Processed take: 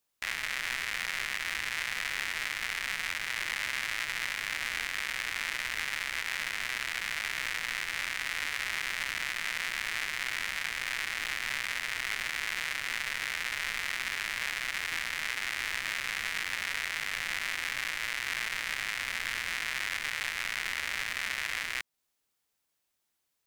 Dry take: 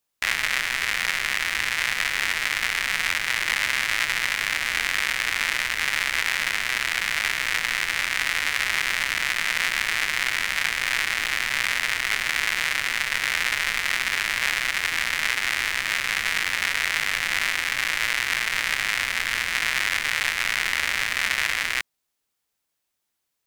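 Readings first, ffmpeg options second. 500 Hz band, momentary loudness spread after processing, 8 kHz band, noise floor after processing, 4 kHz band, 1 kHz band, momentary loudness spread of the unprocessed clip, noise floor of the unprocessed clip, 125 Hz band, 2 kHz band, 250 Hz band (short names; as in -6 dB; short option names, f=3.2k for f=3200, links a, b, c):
-9.5 dB, 1 LU, -9.5 dB, -80 dBFS, -9.5 dB, -9.5 dB, 1 LU, -79 dBFS, -9.0 dB, -9.5 dB, -9.0 dB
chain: -af "alimiter=limit=-15dB:level=0:latency=1:release=211,volume=-1.5dB"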